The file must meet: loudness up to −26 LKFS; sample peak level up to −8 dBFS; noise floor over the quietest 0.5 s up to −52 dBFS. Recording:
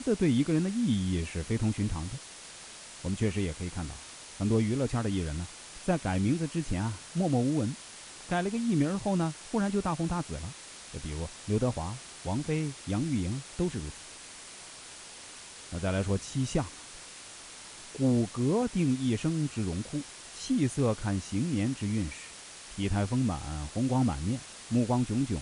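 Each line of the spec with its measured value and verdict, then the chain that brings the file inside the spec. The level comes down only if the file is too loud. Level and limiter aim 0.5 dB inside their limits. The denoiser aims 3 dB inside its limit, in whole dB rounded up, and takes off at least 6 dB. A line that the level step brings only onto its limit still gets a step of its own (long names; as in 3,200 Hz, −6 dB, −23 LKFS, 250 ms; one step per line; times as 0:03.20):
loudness −31.0 LKFS: in spec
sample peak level −14.5 dBFS: in spec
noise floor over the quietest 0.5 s −47 dBFS: out of spec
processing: broadband denoise 8 dB, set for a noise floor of −47 dBFS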